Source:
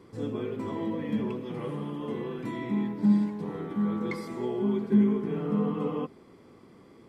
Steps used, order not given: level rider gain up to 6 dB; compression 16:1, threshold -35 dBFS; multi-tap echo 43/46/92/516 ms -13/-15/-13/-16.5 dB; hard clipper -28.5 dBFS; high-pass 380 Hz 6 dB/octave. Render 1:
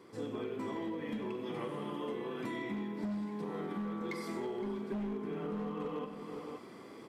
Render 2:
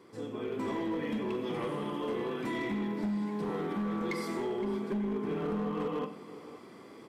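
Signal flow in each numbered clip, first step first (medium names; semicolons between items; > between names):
high-pass > hard clipper > multi-tap echo > level rider > compression; high-pass > compression > multi-tap echo > level rider > hard clipper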